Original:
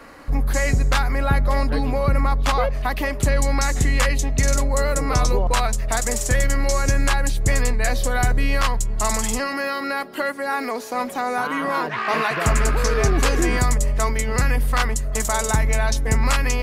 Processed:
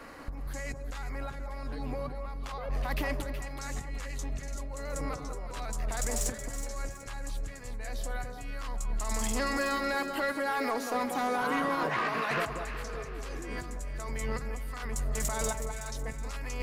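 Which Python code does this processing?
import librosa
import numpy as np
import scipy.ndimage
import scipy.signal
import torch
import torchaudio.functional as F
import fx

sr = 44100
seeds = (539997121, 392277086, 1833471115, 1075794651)

y = fx.over_compress(x, sr, threshold_db=-23.0, ratio=-0.5)
y = 10.0 ** (-14.0 / 20.0) * np.tanh(y / 10.0 ** (-14.0 / 20.0))
y = fx.echo_alternate(y, sr, ms=186, hz=1200.0, feedback_pct=60, wet_db=-5.5)
y = y * 10.0 ** (-9.0 / 20.0)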